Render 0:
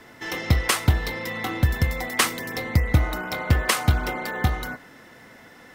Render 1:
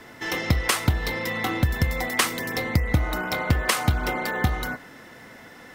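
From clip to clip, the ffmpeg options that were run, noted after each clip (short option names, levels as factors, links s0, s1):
-af "acompressor=threshold=0.0891:ratio=2.5,volume=1.33"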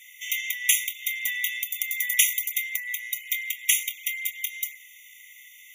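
-af "aemphasis=mode=production:type=50fm,afftfilt=real='re*eq(mod(floor(b*sr/1024/1900),2),1)':imag='im*eq(mod(floor(b*sr/1024/1900),2),1)':win_size=1024:overlap=0.75"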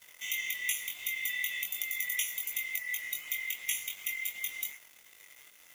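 -af "acompressor=threshold=0.0501:ratio=6,acrusher=bits=6:mix=0:aa=0.5,flanger=delay=19.5:depth=2.7:speed=2.7"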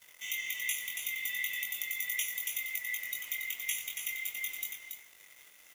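-af "aecho=1:1:280:0.501,volume=0.794"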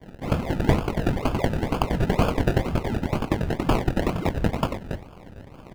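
-af "equalizer=f=9700:t=o:w=2.2:g=13,acrusher=samples=32:mix=1:aa=0.000001:lfo=1:lforange=19.2:lforate=2.1,bass=f=250:g=7,treble=f=4000:g=-10,volume=1.26"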